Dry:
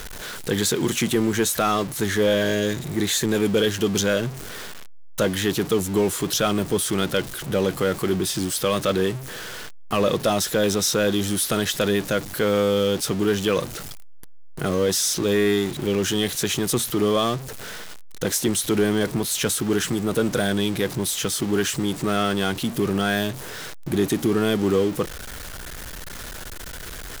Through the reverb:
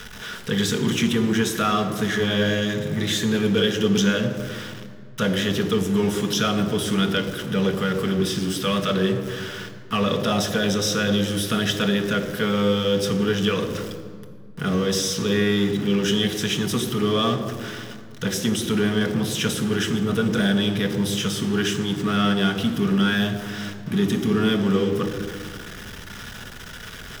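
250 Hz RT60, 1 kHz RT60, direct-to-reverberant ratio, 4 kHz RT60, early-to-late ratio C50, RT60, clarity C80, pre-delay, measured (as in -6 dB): 2.5 s, 1.8 s, 4.5 dB, 1.3 s, 9.0 dB, 1.9 s, 10.0 dB, 3 ms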